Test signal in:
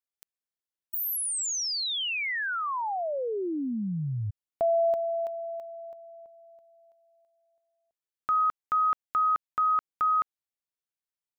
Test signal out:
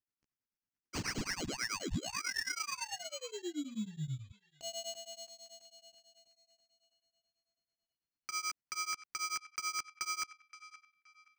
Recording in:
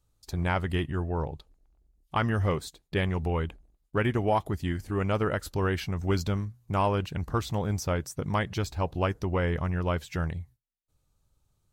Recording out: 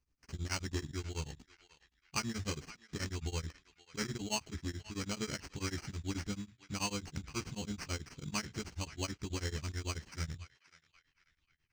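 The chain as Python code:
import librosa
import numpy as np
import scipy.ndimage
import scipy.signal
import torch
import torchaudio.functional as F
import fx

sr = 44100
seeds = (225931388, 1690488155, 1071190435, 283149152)

p1 = fx.low_shelf(x, sr, hz=490.0, db=-5.5)
p2 = fx.doubler(p1, sr, ms=14.0, db=-2)
p3 = fx.sample_hold(p2, sr, seeds[0], rate_hz=3600.0, jitter_pct=0)
p4 = fx.curve_eq(p3, sr, hz=(290.0, 600.0, 7000.0, 11000.0), db=(0, -13, 6, -14))
p5 = p4 + fx.echo_banded(p4, sr, ms=522, feedback_pct=44, hz=2200.0, wet_db=-14.5, dry=0)
p6 = p5 * np.abs(np.cos(np.pi * 9.2 * np.arange(len(p5)) / sr))
y = p6 * 10.0 ** (-4.0 / 20.0)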